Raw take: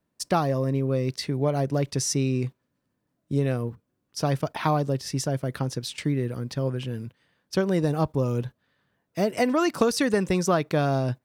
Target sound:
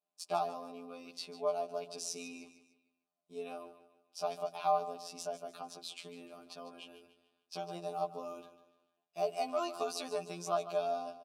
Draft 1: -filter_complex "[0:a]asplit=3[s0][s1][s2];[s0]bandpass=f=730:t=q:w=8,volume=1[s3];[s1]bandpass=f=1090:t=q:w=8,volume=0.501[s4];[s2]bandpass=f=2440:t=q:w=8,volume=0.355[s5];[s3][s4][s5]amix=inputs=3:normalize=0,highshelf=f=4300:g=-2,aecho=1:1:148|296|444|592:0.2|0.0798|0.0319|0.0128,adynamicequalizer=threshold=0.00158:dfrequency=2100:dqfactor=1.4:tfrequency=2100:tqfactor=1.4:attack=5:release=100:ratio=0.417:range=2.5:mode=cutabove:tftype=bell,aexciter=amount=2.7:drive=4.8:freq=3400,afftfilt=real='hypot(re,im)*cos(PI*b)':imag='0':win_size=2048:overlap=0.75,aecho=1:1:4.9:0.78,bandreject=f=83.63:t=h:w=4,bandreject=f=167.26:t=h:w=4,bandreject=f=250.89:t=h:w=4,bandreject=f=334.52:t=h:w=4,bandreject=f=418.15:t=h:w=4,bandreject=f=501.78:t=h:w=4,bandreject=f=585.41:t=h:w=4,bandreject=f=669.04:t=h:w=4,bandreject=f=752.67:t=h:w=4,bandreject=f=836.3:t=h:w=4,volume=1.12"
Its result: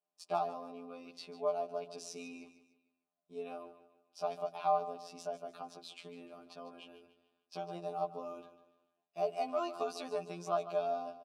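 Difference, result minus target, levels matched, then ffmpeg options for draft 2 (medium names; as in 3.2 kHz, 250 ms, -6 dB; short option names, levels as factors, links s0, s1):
8 kHz band -7.5 dB
-filter_complex "[0:a]asplit=3[s0][s1][s2];[s0]bandpass=f=730:t=q:w=8,volume=1[s3];[s1]bandpass=f=1090:t=q:w=8,volume=0.501[s4];[s2]bandpass=f=2440:t=q:w=8,volume=0.355[s5];[s3][s4][s5]amix=inputs=3:normalize=0,highshelf=f=4300:g=9.5,aecho=1:1:148|296|444|592:0.2|0.0798|0.0319|0.0128,adynamicequalizer=threshold=0.00158:dfrequency=2100:dqfactor=1.4:tfrequency=2100:tqfactor=1.4:attack=5:release=100:ratio=0.417:range=2.5:mode=cutabove:tftype=bell,aexciter=amount=2.7:drive=4.8:freq=3400,afftfilt=real='hypot(re,im)*cos(PI*b)':imag='0':win_size=2048:overlap=0.75,aecho=1:1:4.9:0.78,bandreject=f=83.63:t=h:w=4,bandreject=f=167.26:t=h:w=4,bandreject=f=250.89:t=h:w=4,bandreject=f=334.52:t=h:w=4,bandreject=f=418.15:t=h:w=4,bandreject=f=501.78:t=h:w=4,bandreject=f=585.41:t=h:w=4,bandreject=f=669.04:t=h:w=4,bandreject=f=752.67:t=h:w=4,bandreject=f=836.3:t=h:w=4,volume=1.12"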